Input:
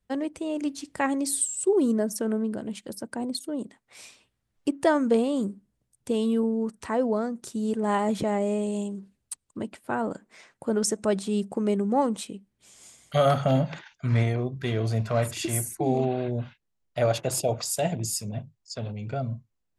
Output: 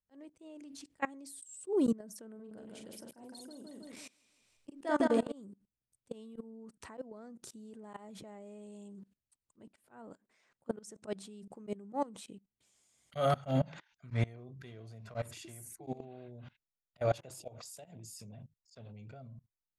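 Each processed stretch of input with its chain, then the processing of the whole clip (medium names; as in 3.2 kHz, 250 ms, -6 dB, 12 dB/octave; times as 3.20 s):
2.35–5.32 s: peaking EQ 200 Hz -2.5 dB 1.4 oct + doubling 43 ms -8.5 dB + feedback delay 160 ms, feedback 38%, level -5.5 dB
whole clip: level held to a coarse grid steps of 23 dB; slow attack 111 ms; trim -3.5 dB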